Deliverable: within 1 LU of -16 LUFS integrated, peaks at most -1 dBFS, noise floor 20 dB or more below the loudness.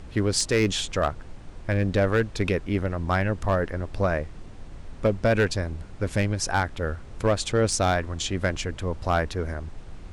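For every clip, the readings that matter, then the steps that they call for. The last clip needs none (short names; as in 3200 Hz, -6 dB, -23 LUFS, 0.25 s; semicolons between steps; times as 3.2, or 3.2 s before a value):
clipped 0.6%; flat tops at -14.5 dBFS; noise floor -42 dBFS; noise floor target -46 dBFS; loudness -26.0 LUFS; peak -14.5 dBFS; loudness target -16.0 LUFS
-> clip repair -14.5 dBFS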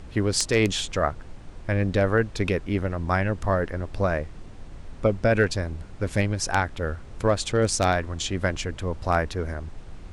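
clipped 0.0%; noise floor -42 dBFS; noise floor target -46 dBFS
-> noise print and reduce 6 dB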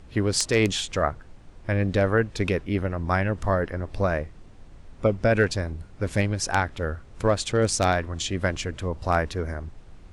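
noise floor -48 dBFS; loudness -25.5 LUFS; peak -5.5 dBFS; loudness target -16.0 LUFS
-> gain +9.5 dB; limiter -1 dBFS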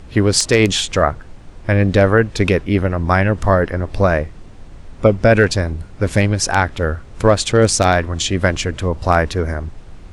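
loudness -16.5 LUFS; peak -1.0 dBFS; noise floor -38 dBFS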